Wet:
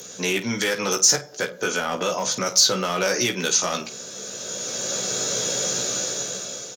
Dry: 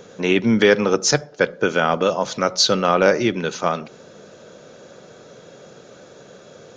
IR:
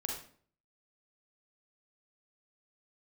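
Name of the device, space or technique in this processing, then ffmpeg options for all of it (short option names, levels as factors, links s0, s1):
FM broadcast chain: -filter_complex "[0:a]highpass=42,dynaudnorm=f=290:g=7:m=5.62,acrossover=split=590|1900[s0][s1][s2];[s0]acompressor=threshold=0.0794:ratio=4[s3];[s1]acompressor=threshold=0.112:ratio=4[s4];[s2]acompressor=threshold=0.0282:ratio=4[s5];[s3][s4][s5]amix=inputs=3:normalize=0,aemphasis=mode=production:type=75fm,alimiter=limit=0.266:level=0:latency=1:release=21,asoftclip=type=hard:threshold=0.188,lowpass=f=15000:w=0.5412,lowpass=f=15000:w=1.3066,aemphasis=mode=production:type=75fm,aecho=1:1:16|51:0.631|0.237,asplit=3[s6][s7][s8];[s6]afade=t=out:st=1.34:d=0.02[s9];[s7]adynamicequalizer=threshold=0.0178:dfrequency=2300:dqfactor=0.7:tfrequency=2300:tqfactor=0.7:attack=5:release=100:ratio=0.375:range=3.5:mode=cutabove:tftype=highshelf,afade=t=in:st=1.34:d=0.02,afade=t=out:st=2.45:d=0.02[s10];[s8]afade=t=in:st=2.45:d=0.02[s11];[s9][s10][s11]amix=inputs=3:normalize=0,volume=0.708"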